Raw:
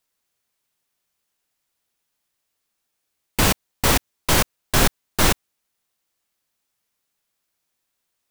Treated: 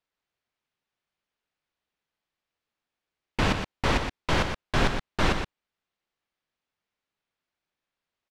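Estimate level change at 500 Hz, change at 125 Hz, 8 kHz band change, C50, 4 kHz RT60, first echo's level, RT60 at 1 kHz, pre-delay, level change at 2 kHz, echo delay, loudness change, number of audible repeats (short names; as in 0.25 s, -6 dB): -4.5 dB, -4.5 dB, -18.5 dB, none, none, -7.5 dB, none, none, -5.0 dB, 0.12 s, -7.0 dB, 1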